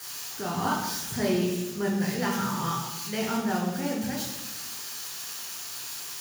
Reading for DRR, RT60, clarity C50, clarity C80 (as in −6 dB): −4.0 dB, 1.1 s, 3.0 dB, 5.5 dB